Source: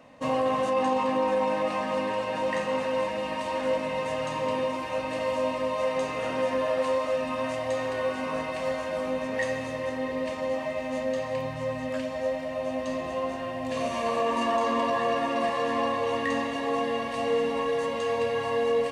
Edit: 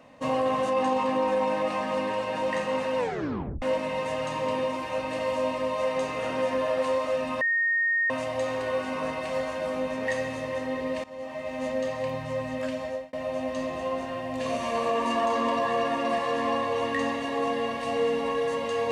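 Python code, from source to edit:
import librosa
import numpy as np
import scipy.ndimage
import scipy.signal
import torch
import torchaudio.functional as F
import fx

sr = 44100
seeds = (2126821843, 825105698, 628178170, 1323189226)

y = fx.edit(x, sr, fx.tape_stop(start_s=2.98, length_s=0.64),
    fx.insert_tone(at_s=7.41, length_s=0.69, hz=1850.0, db=-21.5),
    fx.fade_in_from(start_s=10.35, length_s=0.61, floor_db=-16.5),
    fx.fade_out_span(start_s=12.14, length_s=0.3), tone=tone)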